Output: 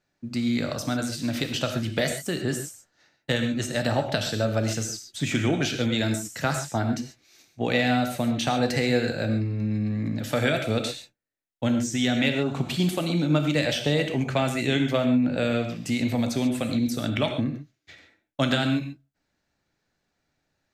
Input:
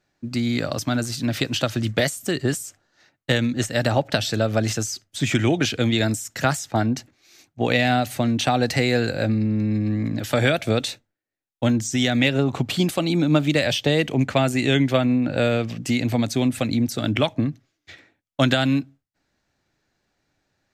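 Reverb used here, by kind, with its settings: gated-style reverb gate 160 ms flat, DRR 5 dB; trim -5 dB

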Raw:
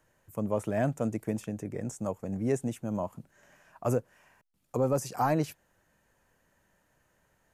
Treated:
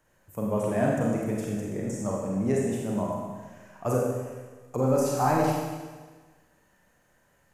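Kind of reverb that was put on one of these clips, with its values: Schroeder reverb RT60 1.4 s, combs from 31 ms, DRR -3 dB

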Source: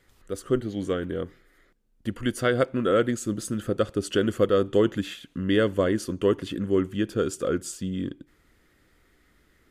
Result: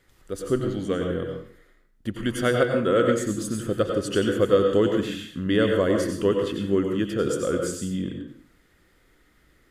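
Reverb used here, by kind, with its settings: plate-style reverb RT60 0.53 s, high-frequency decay 0.8×, pre-delay 80 ms, DRR 2.5 dB

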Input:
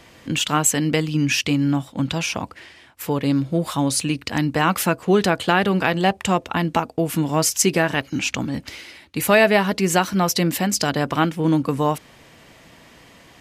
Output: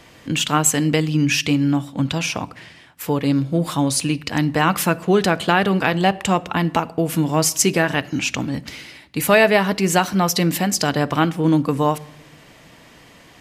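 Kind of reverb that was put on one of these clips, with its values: simulated room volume 2100 m³, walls furnished, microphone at 0.42 m; trim +1 dB

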